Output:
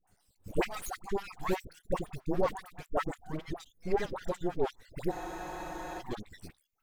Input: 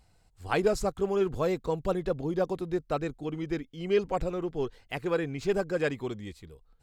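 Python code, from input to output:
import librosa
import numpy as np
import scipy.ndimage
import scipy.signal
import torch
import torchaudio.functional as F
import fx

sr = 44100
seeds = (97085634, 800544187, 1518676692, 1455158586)

y = fx.spec_dropout(x, sr, seeds[0], share_pct=67)
y = fx.high_shelf(y, sr, hz=8700.0, db=12.0)
y = np.maximum(y, 0.0)
y = fx.dispersion(y, sr, late='highs', ms=74.0, hz=800.0)
y = fx.spec_freeze(y, sr, seeds[1], at_s=5.13, hold_s=0.87)
y = F.gain(torch.from_numpy(y), 5.0).numpy()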